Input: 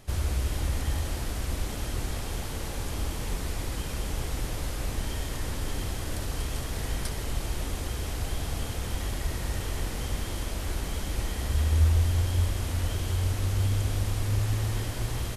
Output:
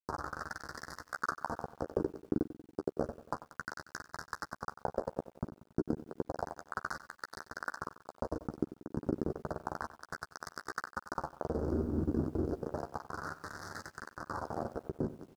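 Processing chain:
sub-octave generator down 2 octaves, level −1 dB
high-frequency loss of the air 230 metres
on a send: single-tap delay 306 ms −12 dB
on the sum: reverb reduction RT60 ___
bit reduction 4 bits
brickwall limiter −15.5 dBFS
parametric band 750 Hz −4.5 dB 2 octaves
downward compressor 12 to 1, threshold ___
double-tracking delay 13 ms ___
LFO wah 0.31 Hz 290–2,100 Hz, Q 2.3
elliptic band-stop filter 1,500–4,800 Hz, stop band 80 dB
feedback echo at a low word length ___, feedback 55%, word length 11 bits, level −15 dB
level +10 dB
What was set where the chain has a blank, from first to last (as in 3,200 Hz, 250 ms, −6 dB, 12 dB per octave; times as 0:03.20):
0.8 s, −25 dBFS, −8 dB, 93 ms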